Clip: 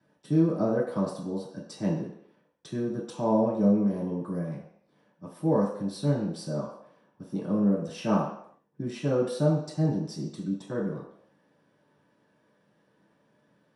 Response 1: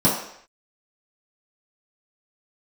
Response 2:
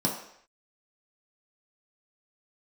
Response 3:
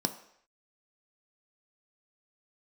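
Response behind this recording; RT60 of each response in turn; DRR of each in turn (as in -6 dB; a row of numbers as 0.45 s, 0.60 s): 1; no single decay rate, no single decay rate, no single decay rate; -8.0 dB, -2.5 dB, 7.0 dB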